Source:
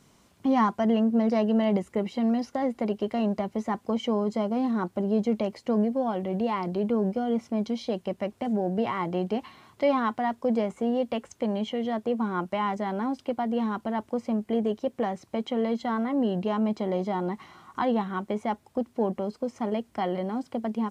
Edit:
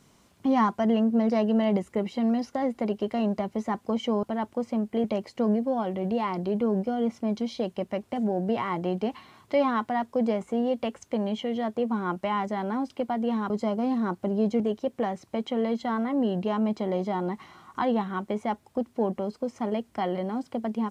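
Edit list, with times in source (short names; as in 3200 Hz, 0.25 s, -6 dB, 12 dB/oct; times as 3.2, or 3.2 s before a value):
4.23–5.33 swap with 13.79–14.6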